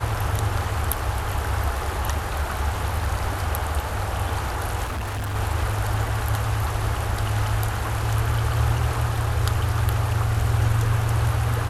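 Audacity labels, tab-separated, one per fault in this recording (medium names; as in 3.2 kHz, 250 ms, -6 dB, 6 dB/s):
4.850000	5.360000	clipped -25 dBFS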